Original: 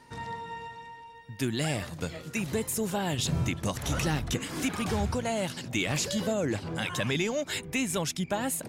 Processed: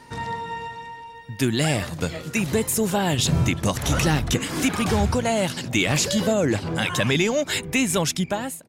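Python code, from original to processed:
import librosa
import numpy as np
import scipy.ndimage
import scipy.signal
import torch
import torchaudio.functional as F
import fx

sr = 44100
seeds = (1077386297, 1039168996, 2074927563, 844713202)

y = fx.fade_out_tail(x, sr, length_s=0.52)
y = y * 10.0 ** (8.0 / 20.0)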